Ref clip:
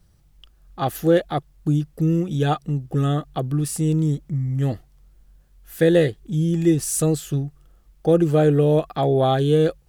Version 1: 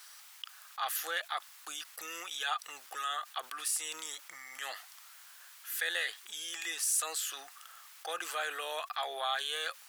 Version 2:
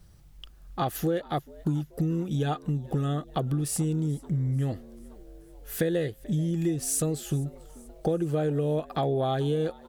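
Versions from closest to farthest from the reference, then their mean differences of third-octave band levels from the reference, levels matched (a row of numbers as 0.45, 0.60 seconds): 2, 1; 4.0, 19.0 decibels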